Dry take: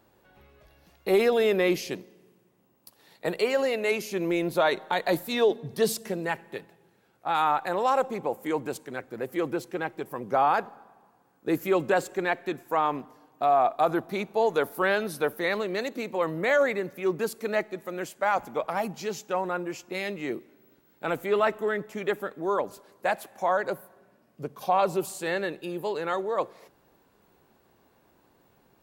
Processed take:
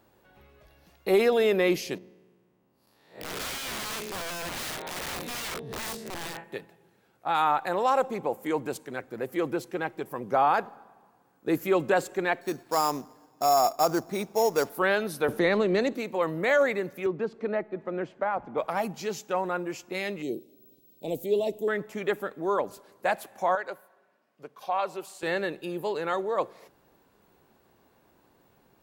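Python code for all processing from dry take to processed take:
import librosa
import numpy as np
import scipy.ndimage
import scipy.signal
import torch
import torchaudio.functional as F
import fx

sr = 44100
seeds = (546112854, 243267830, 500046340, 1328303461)

y = fx.chain(x, sr, fx.spec_blur(span_ms=148.0),
    fx.peak_eq(hz=14000.0, db=-10.0, octaves=1.9),
    fx.overflow_wrap(gain_db=30.0), at=(1.98, 6.44))
y = fx.chain(y, sr, fx.high_shelf(hz=4200.0, db=-11.0),
    fx.sample_hold(seeds[0], rate_hz=6100.0, jitter_pct=0), at=(12.41, 14.7))
y = fx.chain(y, sr, fx.lowpass(hz=8400.0, slope=12),
    fx.low_shelf(hz=490.0, db=9.5),
    fx.band_squash(depth_pct=40), at=(15.28, 15.95))
y = fx.chain(y, sr, fx.spacing_loss(db_at_10k=40),
    fx.band_squash(depth_pct=70), at=(17.06, 18.58))
y = fx.chain(y, sr, fx.cheby1_bandstop(low_hz=530.0, high_hz=3800.0, order=2),
    fx.high_shelf(hz=11000.0, db=9.5), at=(20.22, 21.68))
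y = fx.chain(y, sr, fx.highpass(hz=1100.0, slope=6),
    fx.high_shelf(hz=5400.0, db=-12.0), at=(23.55, 25.23))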